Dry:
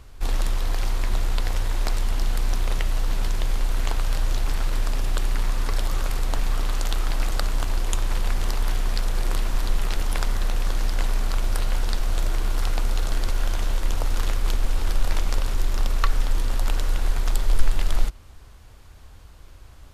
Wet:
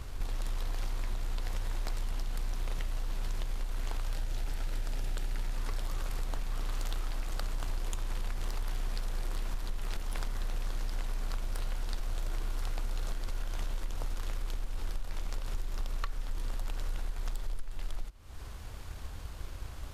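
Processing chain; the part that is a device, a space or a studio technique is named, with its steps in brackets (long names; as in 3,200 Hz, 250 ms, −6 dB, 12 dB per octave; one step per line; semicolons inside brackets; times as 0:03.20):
0:04.14–0:05.57: notch filter 1,100 Hz, Q 5.5
drum-bus smash (transient designer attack +6 dB, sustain +2 dB; downward compressor 16 to 1, threshold −30 dBFS, peak gain reduction 28.5 dB; soft clipping −25.5 dBFS, distortion −23 dB)
level +2.5 dB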